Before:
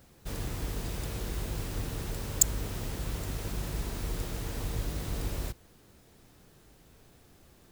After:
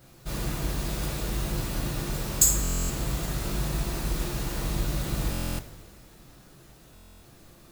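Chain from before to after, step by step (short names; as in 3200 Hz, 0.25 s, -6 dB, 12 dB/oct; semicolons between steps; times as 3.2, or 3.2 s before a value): two-slope reverb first 0.45 s, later 2.3 s, from -18 dB, DRR -5 dB; stuck buffer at 2.62/5.31/6.94, samples 1024, times 11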